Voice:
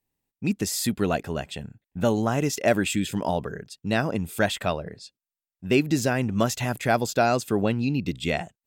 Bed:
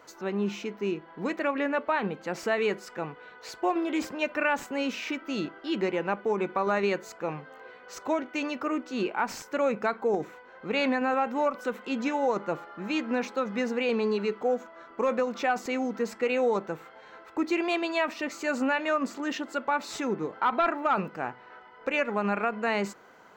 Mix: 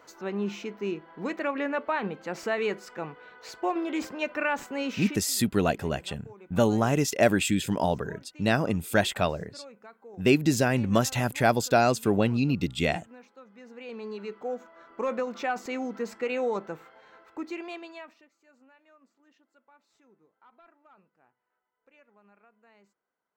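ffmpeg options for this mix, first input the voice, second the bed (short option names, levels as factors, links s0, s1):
-filter_complex "[0:a]adelay=4550,volume=1[s0];[1:a]volume=7.08,afade=t=out:st=5.02:d=0.24:silence=0.1,afade=t=in:st=13.6:d=1.46:silence=0.11885,afade=t=out:st=16.72:d=1.56:silence=0.0316228[s1];[s0][s1]amix=inputs=2:normalize=0"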